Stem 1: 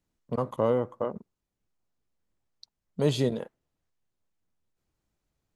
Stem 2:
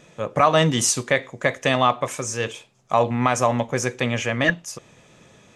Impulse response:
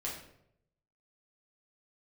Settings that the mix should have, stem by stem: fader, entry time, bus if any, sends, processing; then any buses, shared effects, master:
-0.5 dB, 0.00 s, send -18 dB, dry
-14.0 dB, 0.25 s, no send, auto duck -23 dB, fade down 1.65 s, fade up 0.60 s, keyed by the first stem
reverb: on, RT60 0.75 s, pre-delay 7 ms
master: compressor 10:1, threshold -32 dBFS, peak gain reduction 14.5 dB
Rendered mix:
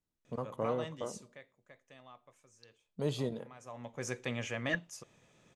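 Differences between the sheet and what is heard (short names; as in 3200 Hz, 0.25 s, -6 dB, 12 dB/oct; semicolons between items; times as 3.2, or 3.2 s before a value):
stem 1 -0.5 dB -> -10.0 dB; master: missing compressor 10:1, threshold -32 dBFS, peak gain reduction 14.5 dB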